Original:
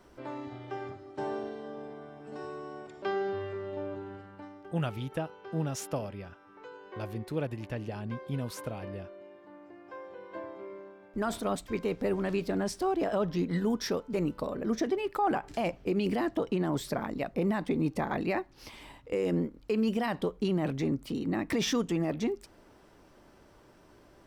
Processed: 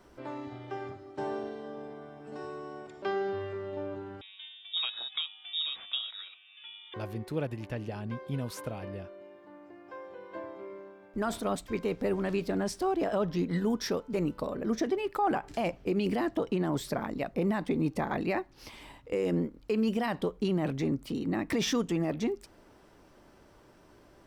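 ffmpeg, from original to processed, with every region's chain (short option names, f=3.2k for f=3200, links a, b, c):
-filter_complex "[0:a]asettb=1/sr,asplit=3[a][b][c];[a]atrim=end=4.214[d];[b]atrim=start=4.21:end=6.94,asetpts=PTS-STARTPTS,afade=t=in:d=0.004:c=qsin,afade=t=out:st=2.726:d=0.004:c=qsin,lowshelf=f=140:g=-7,lowpass=f=3.3k:t=q:w=0.5098,lowpass=f=3.3k:t=q:w=0.6013,lowpass=f=3.3k:t=q:w=0.9,lowpass=f=3.3k:t=q:w=2.563,afreqshift=-3900[e];[c]atrim=start=6.936[f];[d][e]acrossfade=d=0.004:c1=hsin:c2=qsin[g];[g][f]acrossfade=d=0.004:c1=qsin:c2=hsin"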